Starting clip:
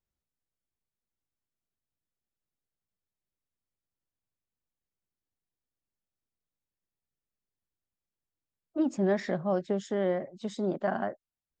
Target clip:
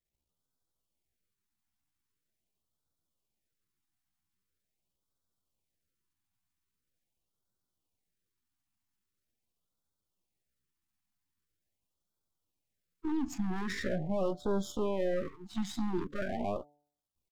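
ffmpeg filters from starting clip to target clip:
-af "aeval=exprs='if(lt(val(0),0),0.251*val(0),val(0))':c=same,alimiter=level_in=4.5dB:limit=-24dB:level=0:latency=1:release=40,volume=-4.5dB,atempo=0.67,bandreject=f=146.3:t=h:w=4,bandreject=f=292.6:t=h:w=4,bandreject=f=438.9:t=h:w=4,bandreject=f=585.2:t=h:w=4,bandreject=f=731.5:t=h:w=4,bandreject=f=877.8:t=h:w=4,afftfilt=real='re*(1-between(b*sr/1024,460*pow(2300/460,0.5+0.5*sin(2*PI*0.43*pts/sr))/1.41,460*pow(2300/460,0.5+0.5*sin(2*PI*0.43*pts/sr))*1.41))':imag='im*(1-between(b*sr/1024,460*pow(2300/460,0.5+0.5*sin(2*PI*0.43*pts/sr))/1.41,460*pow(2300/460,0.5+0.5*sin(2*PI*0.43*pts/sr))*1.41))':win_size=1024:overlap=0.75,volume=6dB"

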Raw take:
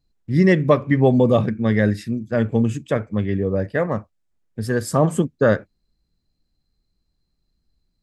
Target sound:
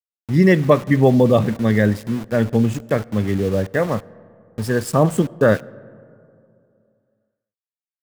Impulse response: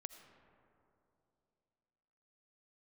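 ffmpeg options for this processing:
-filter_complex "[0:a]aeval=exprs='val(0)*gte(abs(val(0)),0.0266)':c=same,asplit=2[a][b];[1:a]atrim=start_sample=2205,asetrate=48510,aresample=44100[c];[b][c]afir=irnorm=-1:irlink=0,volume=-7dB[d];[a][d]amix=inputs=2:normalize=0"

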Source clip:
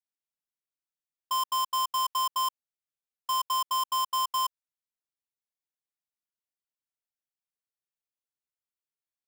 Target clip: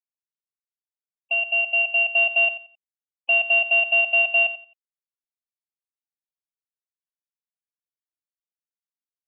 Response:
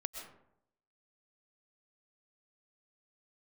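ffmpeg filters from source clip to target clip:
-filter_complex "[0:a]asettb=1/sr,asplit=3[a][b][c];[a]atrim=end=1.344[d];[b]atrim=start=1.34:end=2.09,asetpts=PTS-STARTPTS,afade=t=in:d=0.004:c=qsin,afade=t=out:st=0.746:d=0.004:c=qsin,highpass=400[e];[c]atrim=start=2.086[f];[d][e]acrossfade=d=0.004:c1=hsin:c2=qsin[g];[g][f]acrossfade=d=0.004:c1=qsin:c2=hsin,afftfilt=real='re*gte(hypot(re,im),0.00794)':imag='im*gte(hypot(re,im),0.00794)':win_size=1024:overlap=0.75,dynaudnorm=f=470:g=7:m=15.5dB,asoftclip=type=tanh:threshold=-16dB,aecho=1:1:88|176|264:0.224|0.0515|0.0118,lowpass=f=3.2k:t=q:w=0.5098,lowpass=f=3.2k:t=q:w=0.6013,lowpass=f=3.2k:t=q:w=0.9,lowpass=f=3.2k:t=q:w=2.563,afreqshift=-3800"

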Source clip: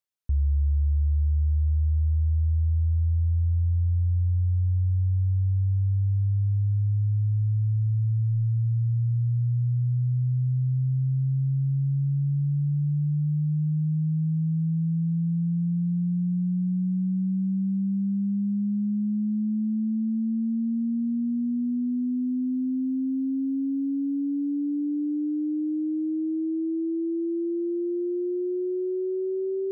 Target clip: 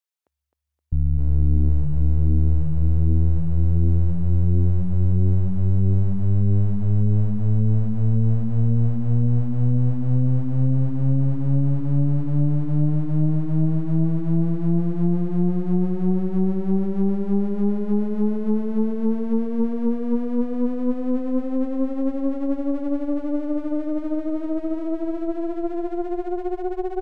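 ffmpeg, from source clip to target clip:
-filter_complex "[0:a]atempo=1.1,acrossover=split=440[a][b];[a]adelay=650[c];[c][b]amix=inputs=2:normalize=0,aeval=exprs='clip(val(0),-1,0.0188)':c=same,asplit=2[d][e];[e]aecho=0:1:261|522|783|1044|1305|1566:0.531|0.265|0.133|0.0664|0.0332|0.0166[f];[d][f]amix=inputs=2:normalize=0,aeval=exprs='0.2*(cos(1*acos(clip(val(0)/0.2,-1,1)))-cos(1*PI/2))+0.0794*(cos(4*acos(clip(val(0)/0.2,-1,1)))-cos(4*PI/2))':c=same"

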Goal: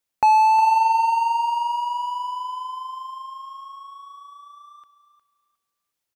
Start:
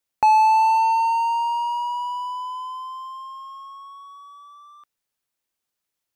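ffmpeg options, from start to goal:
-af "aecho=1:1:359|718|1077:0.251|0.0527|0.0111"

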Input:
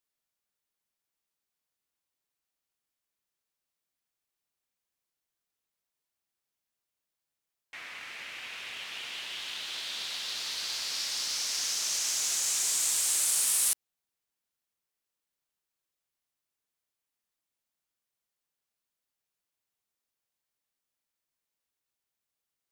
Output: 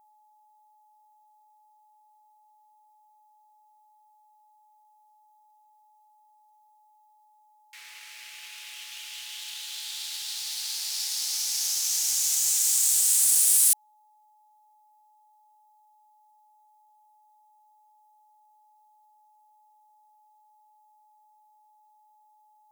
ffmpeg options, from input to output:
-af "aeval=exprs='if(lt(val(0),0),0.447*val(0),val(0))':c=same,aderivative,aeval=exprs='val(0)+0.000447*sin(2*PI*850*n/s)':c=same,volume=8dB"

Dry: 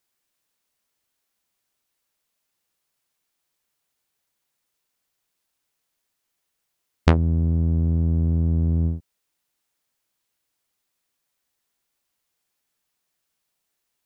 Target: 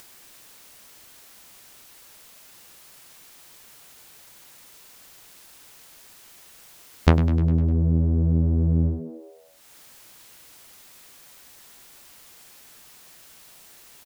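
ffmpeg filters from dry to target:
-filter_complex "[0:a]acompressor=mode=upward:threshold=-27dB:ratio=2.5,asplit=2[a][b];[b]asplit=6[c][d][e][f][g][h];[c]adelay=101,afreqshift=80,volume=-13.5dB[i];[d]adelay=202,afreqshift=160,volume=-18.1dB[j];[e]adelay=303,afreqshift=240,volume=-22.7dB[k];[f]adelay=404,afreqshift=320,volume=-27.2dB[l];[g]adelay=505,afreqshift=400,volume=-31.8dB[m];[h]adelay=606,afreqshift=480,volume=-36.4dB[n];[i][j][k][l][m][n]amix=inputs=6:normalize=0[o];[a][o]amix=inputs=2:normalize=0"

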